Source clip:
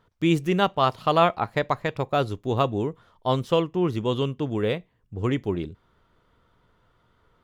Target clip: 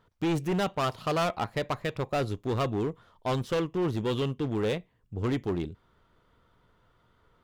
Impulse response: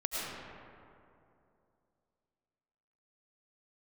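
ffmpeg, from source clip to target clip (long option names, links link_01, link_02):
-af "aeval=exprs='0.501*(cos(1*acos(clip(val(0)/0.501,-1,1)))-cos(1*PI/2))+0.0794*(cos(4*acos(clip(val(0)/0.501,-1,1)))-cos(4*PI/2))':channel_layout=same,volume=22dB,asoftclip=hard,volume=-22dB,volume=-1.5dB"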